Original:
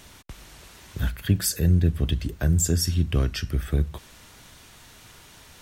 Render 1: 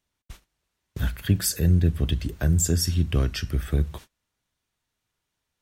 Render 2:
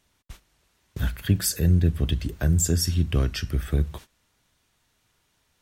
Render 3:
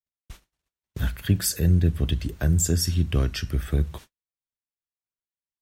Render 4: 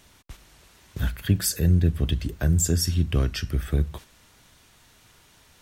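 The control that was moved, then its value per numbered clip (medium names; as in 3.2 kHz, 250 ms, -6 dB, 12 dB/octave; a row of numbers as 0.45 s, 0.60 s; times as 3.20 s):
gate, range: -32 dB, -20 dB, -59 dB, -7 dB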